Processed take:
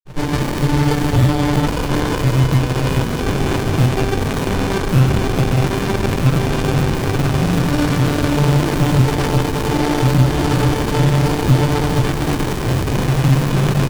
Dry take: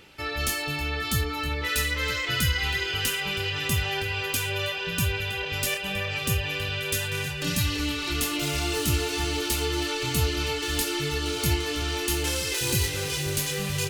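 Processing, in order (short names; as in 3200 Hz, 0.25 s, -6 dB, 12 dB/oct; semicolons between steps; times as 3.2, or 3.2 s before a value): notches 50/100/150/200/250/300/350/400/450 Hz; comb 6.6 ms, depth 85%; echo 0.467 s -6.5 dB; grains, pitch spread up and down by 0 st; resonator 130 Hz, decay 0.27 s, harmonics odd, mix 80%; in parallel at -7 dB: hard clip -31 dBFS, distortion -13 dB; on the sum: bell 2100 Hz -4.5 dB 0.43 oct; maximiser +29 dB; running maximum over 65 samples; gain -1.5 dB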